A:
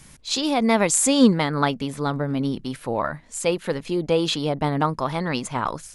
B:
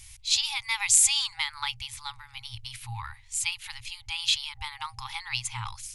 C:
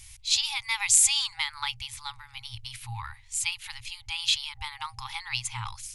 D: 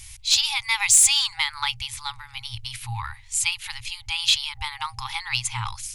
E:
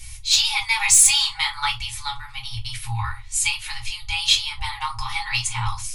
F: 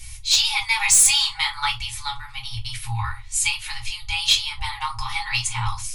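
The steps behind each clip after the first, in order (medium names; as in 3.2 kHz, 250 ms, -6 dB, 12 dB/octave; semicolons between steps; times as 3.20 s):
FFT band-reject 120–790 Hz; high-order bell 1.2 kHz -14 dB 1.3 oct; trim +1.5 dB
no audible change
saturation -12 dBFS, distortion -19 dB; trim +6 dB
reverberation RT60 0.25 s, pre-delay 3 ms, DRR -2 dB; trim -2.5 dB
hard clipper -8.5 dBFS, distortion -19 dB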